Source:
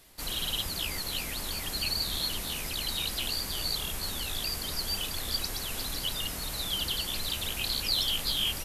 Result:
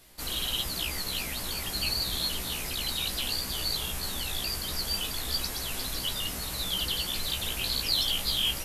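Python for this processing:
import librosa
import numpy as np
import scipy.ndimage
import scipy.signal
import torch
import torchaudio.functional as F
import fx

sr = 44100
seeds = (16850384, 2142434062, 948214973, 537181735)

y = fx.doubler(x, sr, ms=16.0, db=-5.0)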